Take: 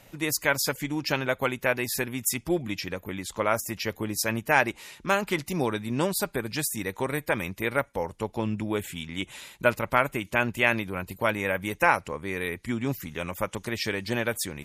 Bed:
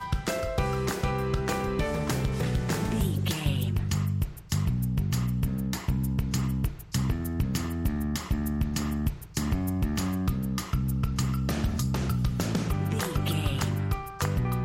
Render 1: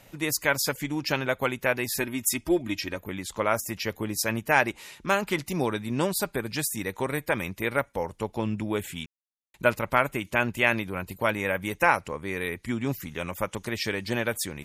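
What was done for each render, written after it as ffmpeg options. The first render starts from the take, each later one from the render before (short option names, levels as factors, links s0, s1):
-filter_complex "[0:a]asettb=1/sr,asplit=3[s0][s1][s2];[s0]atrim=end=2.004[s3];[s1]atrim=start=2:end=2.98,asetpts=PTS-STARTPTS,afade=t=in:d=0.004:c=qsin,afade=t=out:st=0.976:d=0.004:c=qsin,aecho=1:1:3.2:0.53,atrim=end_sample=43218[s4];[s2]atrim=start=2.976[s5];[s3][s4]acrossfade=d=0.004:c1=hsin:c2=qsin[s6];[s6][s5]acrossfade=d=0.004:c1=qsin:c2=hsin,asplit=3[s7][s8][s9];[s7]atrim=end=9.06,asetpts=PTS-STARTPTS,afade=t=out:st=9.056:d=0.004:c=hsin[s10];[s8]atrim=start=9.06:end=9.54,asetpts=PTS-STARTPTS,volume=0[s11];[s9]atrim=start=9.54,asetpts=PTS-STARTPTS,afade=t=in:d=0.004:c=hsin[s12];[s10][s11][s12]concat=n=3:v=0:a=1"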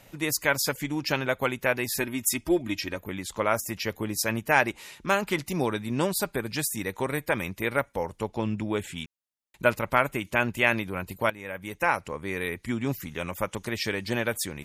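-filter_complex "[0:a]asettb=1/sr,asplit=3[s0][s1][s2];[s0]atrim=end=8.284[s3];[s1]atrim=start=8.28:end=8.98,asetpts=PTS-STARTPTS,afade=t=in:d=0.004:c=qsin,afade=t=out:st=0.696:d=0.004:c=qsin,lowpass=9000[s4];[s2]atrim=start=8.976[s5];[s3][s4]acrossfade=d=0.004:c1=hsin:c2=qsin[s6];[s6][s5]acrossfade=d=0.004:c1=qsin:c2=hsin,asplit=2[s7][s8];[s7]atrim=end=11.3,asetpts=PTS-STARTPTS,afade=t=out:st=11.296:d=0.004:c=hsin:silence=0.177828[s9];[s8]atrim=start=11.3,asetpts=PTS-STARTPTS,afade=t=in:d=0.94:silence=0.177828[s10];[s9][s10]concat=n=2:v=0:a=1"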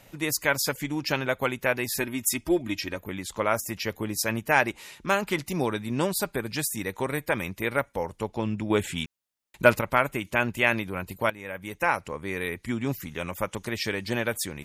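-filter_complex "[0:a]asettb=1/sr,asplit=3[s0][s1][s2];[s0]atrim=end=8.704[s3];[s1]atrim=start=8.7:end=9.81,asetpts=PTS-STARTPTS,afade=t=in:d=0.004:c=qsin,afade=t=out:st=1.106:d=0.004:c=qsin,acontrast=28[s4];[s2]atrim=start=9.806[s5];[s3][s4]acrossfade=d=0.004:c1=hsin:c2=qsin[s6];[s6][s5]acrossfade=d=0.004:c1=qsin:c2=hsin"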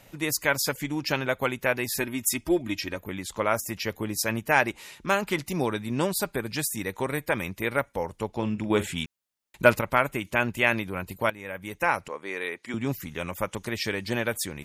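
-filter_complex "[0:a]asettb=1/sr,asplit=3[s0][s1][s2];[s0]atrim=end=8.314[s3];[s1]atrim=start=8.31:end=8.93,asetpts=PTS-STARTPTS,afade=t=in:d=0.004:c=qsin,afade=t=out:st=0.616:d=0.004:c=qsin,asplit=2[s4][s5];[s5]adelay=42,volume=0.237[s6];[s4][s6]amix=inputs=2:normalize=0,atrim=end_sample=27342[s7];[s2]atrim=start=8.926[s8];[s3][s7]acrossfade=d=0.004:c1=hsin:c2=qsin[s9];[s9][s8]acrossfade=d=0.004:c1=qsin:c2=hsin,asettb=1/sr,asplit=3[s10][s11][s12];[s10]atrim=end=12.084[s13];[s11]atrim=start=12.08:end=12.74,asetpts=PTS-STARTPTS,afade=t=in:d=0.004:c=qsin,afade=t=out:st=0.656:d=0.004:c=qsin,highpass=360,lowpass=7900[s14];[s12]atrim=start=12.736[s15];[s13][s14]acrossfade=d=0.004:c1=hsin:c2=qsin[s16];[s16][s15]acrossfade=d=0.004:c1=qsin:c2=hsin"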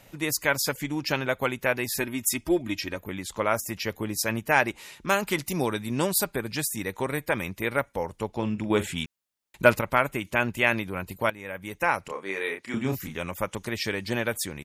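-filter_complex "[0:a]asettb=1/sr,asplit=3[s0][s1][s2];[s0]atrim=end=5.094[s3];[s1]atrim=start=5.09:end=6.25,asetpts=PTS-STARTPTS,afade=t=in:d=0.004:c=qsin,afade=t=out:st=1.156:d=0.004:c=qsin,highshelf=f=5800:g=7[s4];[s2]atrim=start=6.246[s5];[s3][s4]acrossfade=d=0.004:c1=hsin:c2=qsin[s6];[s6][s5]acrossfade=d=0.004:c1=qsin:c2=hsin,asplit=3[s7][s8][s9];[s7]afade=t=out:st=12.07:d=0.02[s10];[s8]asplit=2[s11][s12];[s12]adelay=31,volume=0.631[s13];[s11][s13]amix=inputs=2:normalize=0,afade=t=in:st=12.07:d=0.02,afade=t=out:st=13.16:d=0.02[s14];[s9]afade=t=in:st=13.16:d=0.02[s15];[s10][s14][s15]amix=inputs=3:normalize=0"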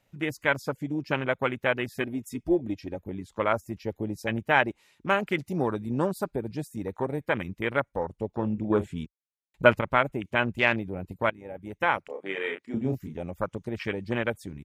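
-af "afwtdn=0.0316,highshelf=f=8900:g=-7.5"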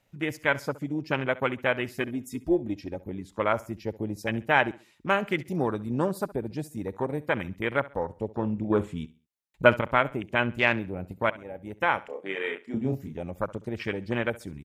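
-af "aecho=1:1:67|134|201:0.112|0.0348|0.0108"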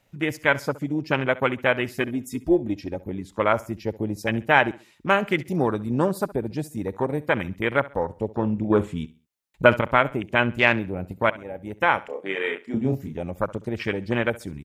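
-af "volume=1.68,alimiter=limit=0.794:level=0:latency=1"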